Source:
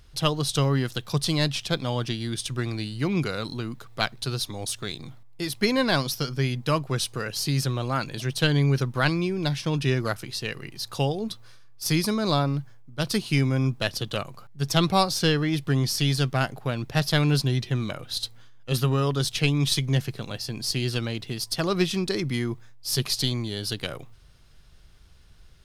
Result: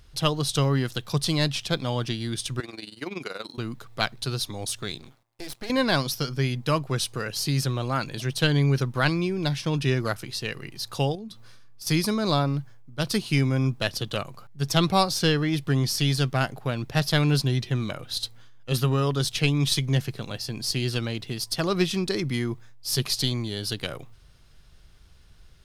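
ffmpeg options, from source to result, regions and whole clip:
-filter_complex "[0:a]asettb=1/sr,asplit=3[a][b][c];[a]atrim=end=2.604[d];[b]atrim=start=2.6:end=3.58,asetpts=PTS-STARTPTS,afade=t=in:d=0.004:c=qsin,afade=t=out:st=0.976:d=0.004:c=qsin,highpass=350,tremolo=f=21:d=0.788[e];[c]atrim=start=3.576[f];[d][e]acrossfade=d=0.004:c1=hsin:c2=qsin[g];[g][f]acrossfade=d=0.004:c1=qsin:c2=hsin,asettb=1/sr,asplit=3[h][i][j];[h]atrim=end=4.994[k];[i]atrim=start=4.99:end=5.7,asetpts=PTS-STARTPTS,afade=t=in:d=0.004:c=qsin,afade=t=out:st=0.706:d=0.004:c=qsin,highpass=180,acompressor=threshold=-27dB:ratio=5:attack=3.2:release=140:knee=1:detection=peak,aeval=exprs='max(val(0),0)':c=same[l];[j]atrim=start=5.696[m];[k][l]acrossfade=d=0.004:c1=hsin:c2=qsin[n];[n][m]acrossfade=d=0.004:c1=qsin:c2=hsin,asettb=1/sr,asplit=3[o][p][q];[o]atrim=end=11.154[r];[p]atrim=start=11.15:end=11.87,asetpts=PTS-STARTPTS,afade=t=in:d=0.004:c=qsin,afade=t=out:st=0.716:d=0.004:c=qsin,equalizer=f=210:t=o:w=0.76:g=7,acompressor=threshold=-37dB:ratio=5:attack=3.2:release=140:knee=1:detection=peak[s];[q]atrim=start=11.866[t];[r][s]acrossfade=d=0.004:c1=hsin:c2=qsin[u];[u][t]acrossfade=d=0.004:c1=qsin:c2=hsin"

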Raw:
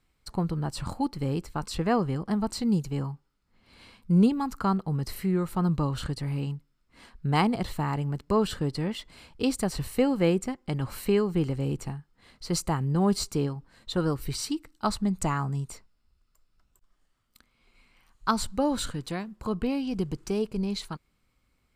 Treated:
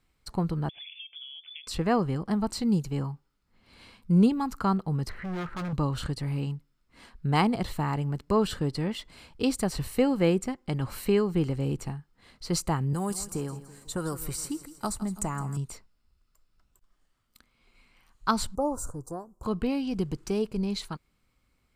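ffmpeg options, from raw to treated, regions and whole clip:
-filter_complex "[0:a]asettb=1/sr,asplit=3[a][b][c];[a]atrim=end=0.694[d];[b]atrim=start=0.69:end=1.67,asetpts=PTS-STARTPTS,afade=t=in:d=0.004:c=qsin,afade=t=out:st=0.976:d=0.004:c=qsin,highshelf=f=1.6k:t=q:w=1.5:g=-9,acompressor=threshold=-40dB:ratio=12:attack=3.2:release=140:knee=1:detection=peak,lowpass=f=3k:t=q:w=0.5098,lowpass=f=3k:t=q:w=0.6013,lowpass=f=3k:t=q:w=0.9,lowpass=f=3k:t=q:w=2.563,afreqshift=-3500[e];[c]atrim=start=1.666[f];[d][e]acrossfade=d=0.004:c1=hsin:c2=qsin[g];[g][f]acrossfade=d=0.004:c1=qsin:c2=hsin,asettb=1/sr,asplit=3[h][i][j];[h]atrim=end=5.094[k];[i]atrim=start=5.09:end=5.73,asetpts=PTS-STARTPTS,afade=t=in:d=0.004:c=qsin,afade=t=out:st=0.636:d=0.004:c=qsin,lowpass=f=1.6k:t=q:w=3.3,volume=32.5dB,asoftclip=hard,volume=-32.5dB,asplit=2[l][m];[m]adelay=17,volume=-12.5dB[n];[l][n]amix=inputs=2:normalize=0,atrim=end_sample=28224[o];[j]atrim=start=5.726[p];[k][o]acrossfade=d=0.004:c1=hsin:c2=qsin[q];[q][p]acrossfade=d=0.004:c1=qsin:c2=hsin,asettb=1/sr,asplit=3[r][s][t];[r]atrim=end=12.934[u];[s]atrim=start=12.93:end=15.57,asetpts=PTS-STARTPTS,afade=t=in:d=0.004:c=qsin,afade=t=out:st=2.636:d=0.004:c=qsin,highshelf=f=5.7k:t=q:w=1.5:g=12.5,acrossover=split=740|2100|4600[v][w][x][y];[v]acompressor=threshold=-31dB:ratio=3[z];[w]acompressor=threshold=-37dB:ratio=3[aa];[x]acompressor=threshold=-52dB:ratio=3[ab];[y]acompressor=threshold=-39dB:ratio=3[ac];[z][aa][ab][ac]amix=inputs=4:normalize=0,aecho=1:1:164|328|492|656|820:0.178|0.0871|0.0427|0.0209|0.0103,atrim=end_sample=116424[ad];[t]atrim=start=15.566[ae];[u][ad]acrossfade=d=0.004:c1=hsin:c2=qsin[af];[af][ae]acrossfade=d=0.004:c1=qsin:c2=hsin,asettb=1/sr,asplit=3[ag][ah][ai];[ag]atrim=end=18.554[aj];[ah]atrim=start=18.55:end=19.43,asetpts=PTS-STARTPTS,afade=t=in:d=0.004:c=qsin,afade=t=out:st=0.876:d=0.004:c=qsin,asuperstop=centerf=2700:order=8:qfactor=0.53,equalizer=f=210:t=o:w=0.62:g=-14.5[ak];[ai]atrim=start=19.426[al];[aj][ak]acrossfade=d=0.004:c1=hsin:c2=qsin[am];[am][al]acrossfade=d=0.004:c1=qsin:c2=hsin"

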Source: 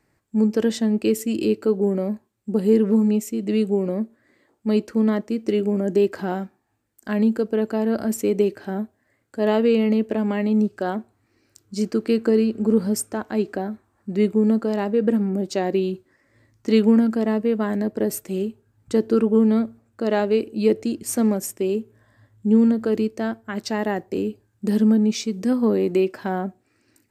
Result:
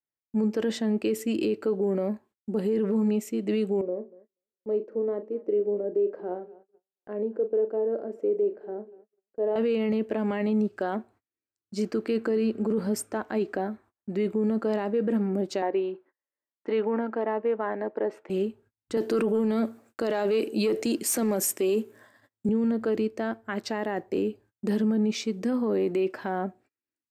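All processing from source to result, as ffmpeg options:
-filter_complex "[0:a]asettb=1/sr,asplit=3[a][b][c];[a]atrim=end=3.814[d];[b]atrim=start=3.81:end=9.56,asetpts=PTS-STARTPTS,afade=t=in:d=0.004:c=qsin,afade=t=out:st=5.746:d=0.004:c=qsin,bandpass=f=460:t=q:w=2.8,asplit=2[e][f];[f]adelay=39,volume=-11dB[g];[e][g]amix=inputs=2:normalize=0,atrim=end_sample=253575,aecho=1:1:240|480|720:0.0841|0.037|0.0163,atrim=end_sample=253575[h];[c]atrim=start=9.556[i];[d][h]acrossfade=d=0.004:c1=hsin:c2=qsin[j];[j][i]acrossfade=d=0.004:c1=qsin:c2=hsin,asettb=1/sr,asplit=3[k][l][m];[k]atrim=end=15.624[n];[l]atrim=start=15.62:end=18.3,asetpts=PTS-STARTPTS,afade=t=in:d=0.004:c=qsin,afade=t=out:st=2.676:d=0.004:c=qsin,highpass=390,lowpass=2k,equalizer=f=890:t=o:w=0.26:g=5.5[o];[m]atrim=start=18.296[p];[n][o]acrossfade=d=0.004:c1=hsin:c2=qsin[q];[q][p]acrossfade=d=0.004:c1=qsin:c2=hsin,asettb=1/sr,asplit=3[r][s][t];[r]atrim=end=18.974[u];[s]atrim=start=18.97:end=22.49,asetpts=PTS-STARTPTS,afade=t=in:d=0.004:c=qsin,afade=t=out:st=3.516:d=0.004:c=qsin,highpass=190,highshelf=f=4.3k:g=12,acontrast=68[v];[t]atrim=start=22.486[w];[u][v]acrossfade=d=0.004:c1=hsin:c2=qsin[x];[x][w]acrossfade=d=0.004:c1=qsin:c2=hsin,bass=f=250:g=-7,treble=f=4k:g=-8,agate=range=-33dB:threshold=-52dB:ratio=16:detection=peak,alimiter=limit=-18.5dB:level=0:latency=1:release=10"

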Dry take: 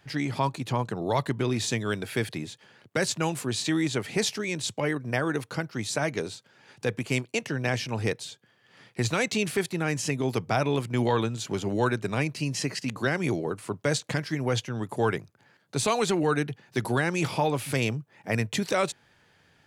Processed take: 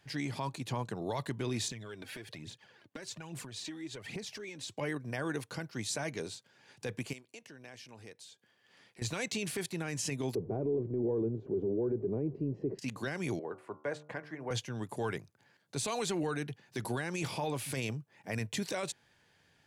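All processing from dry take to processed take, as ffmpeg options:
-filter_complex "[0:a]asettb=1/sr,asplit=3[a][b][c];[a]atrim=end=1.684[d];[b]atrim=start=1.68:end=4.77,asetpts=PTS-STARTPTS,afade=t=in:d=0.004:c=qsin,afade=t=out:st=3.086:d=0.004:c=qsin,equalizer=f=11k:w=0.49:g=-8,acompressor=threshold=-35dB:ratio=8:attack=3.2:release=140:knee=1:detection=peak,aphaser=in_gain=1:out_gain=1:delay=4:decay=0.53:speed=1.2:type=triangular[e];[c]atrim=start=4.766[f];[d][e]acrossfade=d=0.004:c1=hsin:c2=qsin[g];[g][f]acrossfade=d=0.004:c1=qsin:c2=hsin,asettb=1/sr,asplit=3[h][i][j];[h]atrim=end=7.134[k];[i]atrim=start=7.13:end=9.02,asetpts=PTS-STARTPTS,afade=t=in:d=0.004:c=qsin,afade=t=out:st=1.886:d=0.004:c=qsin,equalizer=f=130:t=o:w=0.79:g=-7.5,acompressor=threshold=-53dB:ratio=2:attack=3.2:release=140:knee=1:detection=peak,aeval=exprs='0.0355*(abs(mod(val(0)/0.0355+3,4)-2)-1)':c=same[l];[j]atrim=start=9.016[m];[k][l]acrossfade=d=0.004:c1=hsin:c2=qsin[n];[n][m]acrossfade=d=0.004:c1=qsin:c2=hsin,asettb=1/sr,asplit=3[o][p][q];[o]atrim=end=10.354[r];[p]atrim=start=10.35:end=12.79,asetpts=PTS-STARTPTS,afade=t=in:d=0.004:c=qsin,afade=t=out:st=2.436:d=0.004:c=qsin,aeval=exprs='val(0)+0.5*0.0106*sgn(val(0))':c=same,lowpass=f=400:t=q:w=4.7[s];[q]atrim=start=12.786[t];[r][s]acrossfade=d=0.004:c1=hsin:c2=qsin[u];[u][t]acrossfade=d=0.004:c1=qsin:c2=hsin,asettb=1/sr,asplit=3[v][w][x];[v]atrim=end=13.394[y];[w]atrim=start=13.39:end=14.51,asetpts=PTS-STARTPTS,afade=t=in:d=0.004:c=qsin,afade=t=out:st=1.116:d=0.004:c=qsin,acrossover=split=350 2000:gain=0.251 1 0.0708[z][aa][ab];[z][aa][ab]amix=inputs=3:normalize=0,bandreject=f=74.97:t=h:w=4,bandreject=f=149.94:t=h:w=4,bandreject=f=224.91:t=h:w=4,bandreject=f=299.88:t=h:w=4,bandreject=f=374.85:t=h:w=4,bandreject=f=449.82:t=h:w=4,bandreject=f=524.79:t=h:w=4,bandreject=f=599.76:t=h:w=4,bandreject=f=674.73:t=h:w=4,bandreject=f=749.7:t=h:w=4,bandreject=f=824.67:t=h:w=4,bandreject=f=899.64:t=h:w=4,bandreject=f=974.61:t=h:w=4,bandreject=f=1.04958k:t=h:w=4,bandreject=f=1.12455k:t=h:w=4,bandreject=f=1.19952k:t=h:w=4,bandreject=f=1.27449k:t=h:w=4,bandreject=f=1.34946k:t=h:w=4,bandreject=f=1.42443k:t=h:w=4[ac];[x]atrim=start=14.506[ad];[y][ac]acrossfade=d=0.004:c1=hsin:c2=qsin[ae];[ae][ad]acrossfade=d=0.004:c1=qsin:c2=hsin,equalizer=f=8.7k:w=0.38:g=4,bandreject=f=1.3k:w=14,alimiter=limit=-18.5dB:level=0:latency=1:release=21,volume=-7dB"

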